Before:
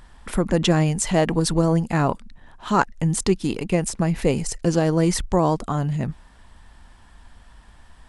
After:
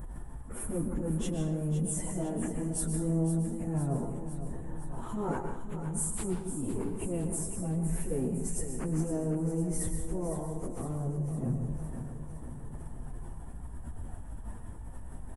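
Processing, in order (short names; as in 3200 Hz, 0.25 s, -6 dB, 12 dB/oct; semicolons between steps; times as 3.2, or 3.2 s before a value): EQ curve 420 Hz 0 dB, 950 Hz -9 dB, 4500 Hz -28 dB, 9900 Hz -1 dB; compressor 10:1, threshold -33 dBFS, peak gain reduction 19.5 dB; transient shaper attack -10 dB, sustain +10 dB; plain phase-vocoder stretch 1.9×; feedback echo 0.509 s, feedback 60%, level -10.5 dB; plate-style reverb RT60 0.6 s, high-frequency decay 0.9×, pre-delay 0.11 s, DRR 5.5 dB; gain +5.5 dB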